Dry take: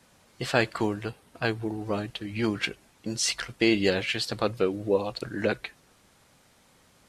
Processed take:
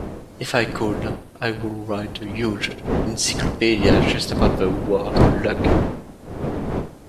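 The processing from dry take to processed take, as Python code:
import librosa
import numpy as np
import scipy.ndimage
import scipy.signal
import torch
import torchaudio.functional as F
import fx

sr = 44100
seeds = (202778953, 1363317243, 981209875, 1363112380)

y = fx.dmg_wind(x, sr, seeds[0], corner_hz=390.0, level_db=-27.0)
y = fx.high_shelf(y, sr, hz=11000.0, db=8.0)
y = fx.echo_feedback(y, sr, ms=73, feedback_pct=43, wet_db=-16.5)
y = y * 10.0 ** (4.0 / 20.0)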